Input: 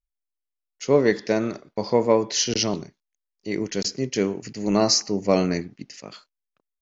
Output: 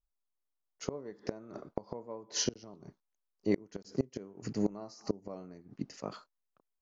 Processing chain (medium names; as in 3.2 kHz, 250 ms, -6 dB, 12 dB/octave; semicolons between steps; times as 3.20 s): resonant high shelf 1.6 kHz -9 dB, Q 1.5; inverted gate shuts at -17 dBFS, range -26 dB